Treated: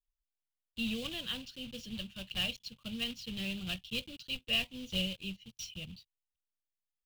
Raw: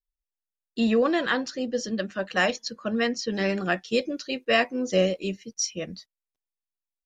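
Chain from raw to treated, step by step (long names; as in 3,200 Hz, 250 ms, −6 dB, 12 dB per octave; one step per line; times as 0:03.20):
one scale factor per block 3 bits
drawn EQ curve 120 Hz 0 dB, 350 Hz −23 dB, 1,900 Hz −24 dB, 2,900 Hz 0 dB, 5,600 Hz −18 dB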